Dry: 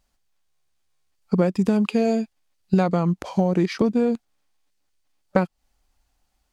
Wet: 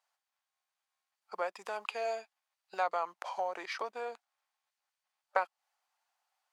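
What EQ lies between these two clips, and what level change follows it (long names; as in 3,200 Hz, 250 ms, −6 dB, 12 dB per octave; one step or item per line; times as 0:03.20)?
high-pass filter 770 Hz 24 dB per octave
high-shelf EQ 2,100 Hz −11 dB
0.0 dB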